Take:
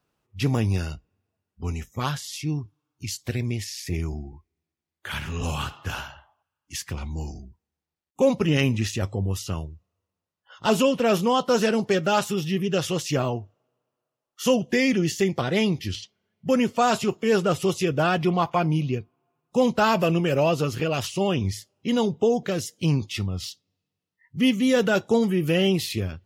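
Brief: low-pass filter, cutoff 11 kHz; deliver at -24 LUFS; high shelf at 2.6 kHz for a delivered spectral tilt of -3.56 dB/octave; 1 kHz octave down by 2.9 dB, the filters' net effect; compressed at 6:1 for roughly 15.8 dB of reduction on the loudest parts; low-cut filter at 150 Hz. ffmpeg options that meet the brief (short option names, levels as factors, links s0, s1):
-af "highpass=150,lowpass=11000,equalizer=f=1000:t=o:g=-5.5,highshelf=f=2600:g=9,acompressor=threshold=0.02:ratio=6,volume=4.47"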